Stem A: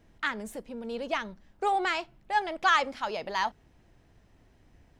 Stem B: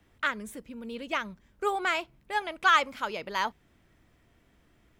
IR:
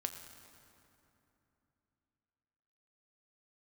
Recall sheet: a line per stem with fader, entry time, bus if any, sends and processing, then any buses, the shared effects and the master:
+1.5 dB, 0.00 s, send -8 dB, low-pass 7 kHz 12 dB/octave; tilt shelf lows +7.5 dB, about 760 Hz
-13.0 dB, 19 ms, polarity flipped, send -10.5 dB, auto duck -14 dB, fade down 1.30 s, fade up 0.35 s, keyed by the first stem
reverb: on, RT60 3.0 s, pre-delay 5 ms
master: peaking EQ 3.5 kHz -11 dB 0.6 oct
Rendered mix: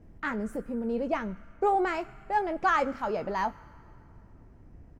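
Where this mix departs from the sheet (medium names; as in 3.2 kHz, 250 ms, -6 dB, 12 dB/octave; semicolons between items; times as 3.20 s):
stem A: send off; reverb return +9.5 dB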